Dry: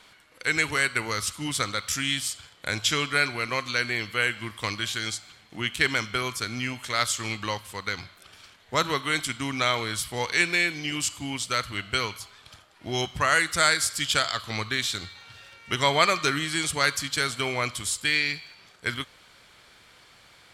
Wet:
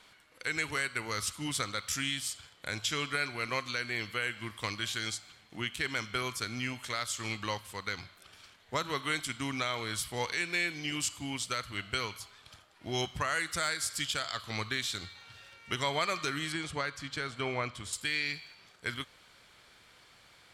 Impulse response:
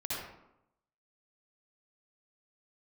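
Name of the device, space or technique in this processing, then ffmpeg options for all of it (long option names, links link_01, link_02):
clipper into limiter: -filter_complex "[0:a]asoftclip=type=hard:threshold=-8dB,alimiter=limit=-14.5dB:level=0:latency=1:release=255,asettb=1/sr,asplit=3[link_01][link_02][link_03];[link_01]atrim=end=16.524[link_04];[link_02]atrim=start=16.52:end=17.93,asetpts=PTS-STARTPTS,afade=type=in:duration=0.004:curve=qsin,afade=type=out:start_time=1.406:duration=0.004:curve=qsin,aemphasis=mode=reproduction:type=75fm[link_05];[link_03]atrim=start=17.926[link_06];[link_04][link_05]acrossfade=duration=0.004:curve1=hsin:curve2=qsin[link_07];[link_07][link_06]acrossfade=duration=0.004:curve1=qsin:curve2=hsin,volume=-5dB"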